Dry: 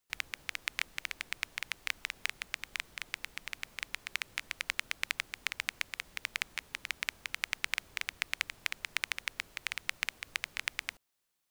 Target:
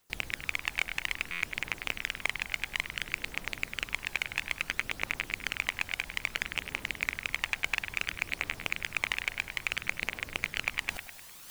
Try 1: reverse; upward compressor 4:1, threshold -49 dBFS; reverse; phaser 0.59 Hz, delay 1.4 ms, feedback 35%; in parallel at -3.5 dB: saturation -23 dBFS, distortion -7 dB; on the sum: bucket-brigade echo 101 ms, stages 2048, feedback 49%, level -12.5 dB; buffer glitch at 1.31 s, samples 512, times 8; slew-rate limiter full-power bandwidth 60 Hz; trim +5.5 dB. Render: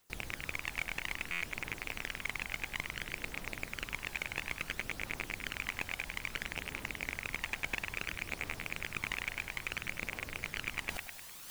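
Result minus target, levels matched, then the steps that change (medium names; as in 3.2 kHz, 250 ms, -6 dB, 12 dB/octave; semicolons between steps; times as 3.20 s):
slew-rate limiter: distortion +7 dB
change: slew-rate limiter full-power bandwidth 199.5 Hz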